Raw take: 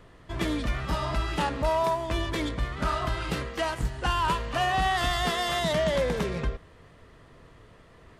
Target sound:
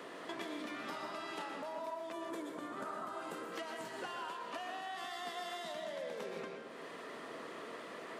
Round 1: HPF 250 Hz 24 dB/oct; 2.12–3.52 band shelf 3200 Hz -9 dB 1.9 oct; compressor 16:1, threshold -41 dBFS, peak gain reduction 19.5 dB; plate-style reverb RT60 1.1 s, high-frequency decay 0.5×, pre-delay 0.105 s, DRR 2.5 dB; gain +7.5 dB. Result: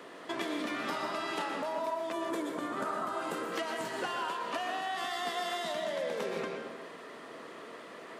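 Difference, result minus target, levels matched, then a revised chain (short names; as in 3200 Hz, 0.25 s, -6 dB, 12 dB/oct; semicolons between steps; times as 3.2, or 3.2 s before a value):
compressor: peak gain reduction -8 dB
HPF 250 Hz 24 dB/oct; 2.12–3.52 band shelf 3200 Hz -9 dB 1.9 oct; compressor 16:1, threshold -49.5 dBFS, peak gain reduction 27.5 dB; plate-style reverb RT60 1.1 s, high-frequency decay 0.5×, pre-delay 0.105 s, DRR 2.5 dB; gain +7.5 dB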